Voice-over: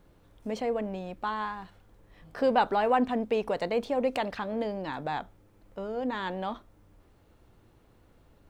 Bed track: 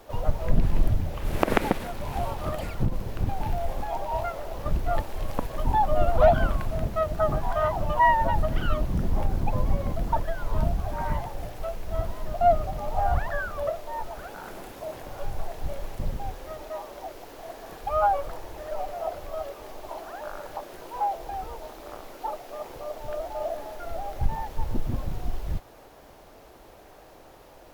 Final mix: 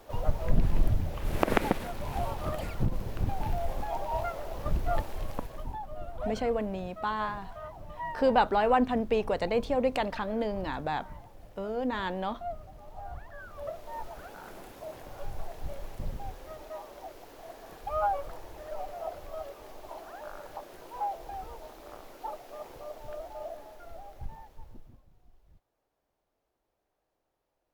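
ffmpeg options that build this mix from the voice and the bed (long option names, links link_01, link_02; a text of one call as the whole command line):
ffmpeg -i stem1.wav -i stem2.wav -filter_complex "[0:a]adelay=5800,volume=0.5dB[link_01];[1:a]volume=9dB,afade=type=out:start_time=5.08:duration=0.72:silence=0.177828,afade=type=in:start_time=13.33:duration=0.62:silence=0.251189,afade=type=out:start_time=22.69:duration=2.33:silence=0.0562341[link_02];[link_01][link_02]amix=inputs=2:normalize=0" out.wav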